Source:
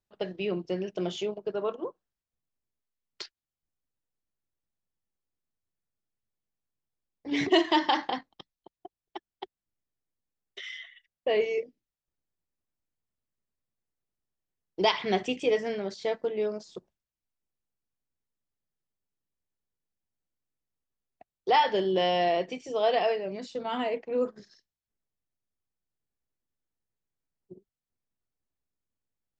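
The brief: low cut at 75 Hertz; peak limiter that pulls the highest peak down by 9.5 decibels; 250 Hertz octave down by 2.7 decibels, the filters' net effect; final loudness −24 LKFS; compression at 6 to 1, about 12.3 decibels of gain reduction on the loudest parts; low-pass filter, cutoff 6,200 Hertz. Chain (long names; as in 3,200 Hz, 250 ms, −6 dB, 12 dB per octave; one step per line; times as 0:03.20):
high-pass filter 75 Hz
low-pass filter 6,200 Hz
parametric band 250 Hz −4 dB
downward compressor 6 to 1, threshold −32 dBFS
level +16.5 dB
brickwall limiter −13.5 dBFS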